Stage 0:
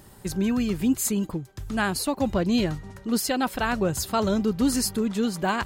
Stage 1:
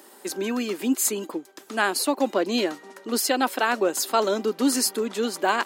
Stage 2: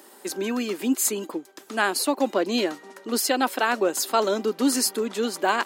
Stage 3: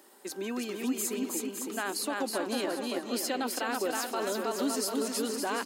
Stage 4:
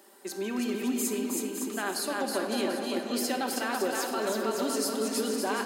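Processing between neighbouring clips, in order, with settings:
steep high-pass 270 Hz 36 dB/octave; trim +3.5 dB
no audible change
on a send: bouncing-ball echo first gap 320 ms, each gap 0.75×, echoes 5; on the sum: peak limiter -13.5 dBFS, peak gain reduction 7 dB; trim -8 dB
simulated room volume 1900 m³, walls mixed, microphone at 1.2 m

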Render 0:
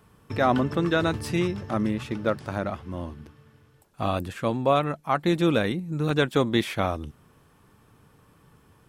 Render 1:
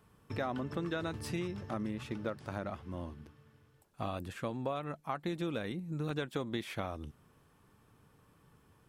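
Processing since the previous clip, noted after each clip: compression 6:1, threshold -25 dBFS, peak gain reduction 9.5 dB; trim -7.5 dB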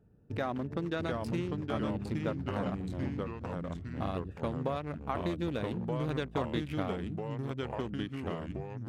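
local Wiener filter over 41 samples; ever faster or slower copies 655 ms, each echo -2 st, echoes 3; trim +2.5 dB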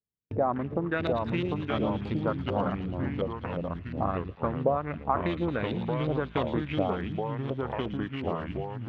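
LFO low-pass saw up 2.8 Hz 520–3800 Hz; gate -41 dBFS, range -39 dB; feedback echo behind a high-pass 112 ms, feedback 77%, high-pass 3.9 kHz, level -4 dB; trim +3.5 dB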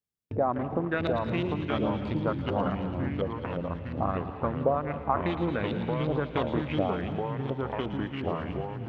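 reverberation RT60 1.0 s, pre-delay 155 ms, DRR 10.5 dB

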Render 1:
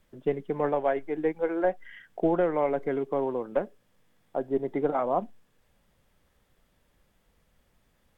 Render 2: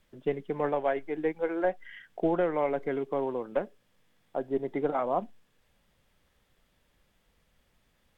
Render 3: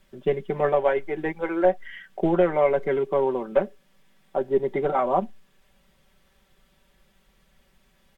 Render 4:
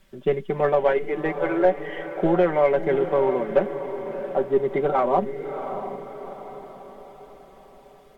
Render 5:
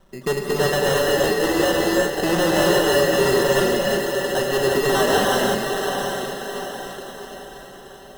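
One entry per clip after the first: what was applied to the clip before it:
peaking EQ 3.2 kHz +4.5 dB 1.9 oct; trim -2.5 dB
comb 5.2 ms, depth 70%; trim +5 dB
in parallel at -10 dB: saturation -22.5 dBFS, distortion -8 dB; on the sum: echo that smears into a reverb 669 ms, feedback 48%, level -9.5 dB
sample-and-hold 19×; valve stage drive 23 dB, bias 0.35; gated-style reverb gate 390 ms rising, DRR -2.5 dB; trim +5 dB

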